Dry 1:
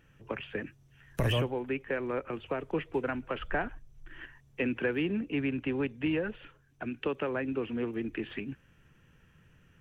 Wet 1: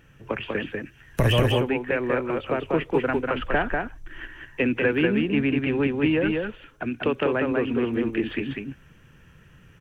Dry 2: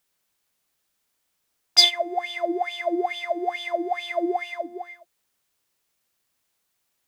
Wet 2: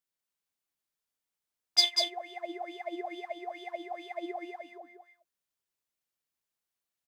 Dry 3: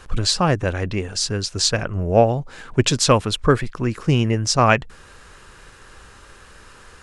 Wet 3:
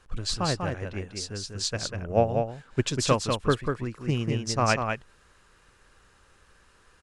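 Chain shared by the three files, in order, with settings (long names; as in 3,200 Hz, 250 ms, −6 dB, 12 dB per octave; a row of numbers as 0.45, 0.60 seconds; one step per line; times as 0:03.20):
on a send: single-tap delay 194 ms −3.5 dB
on the sum: expander for the loud parts 1.5 to 1, over −27 dBFS
normalise the peak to −9 dBFS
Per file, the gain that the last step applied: +8.5, −8.0, −7.0 decibels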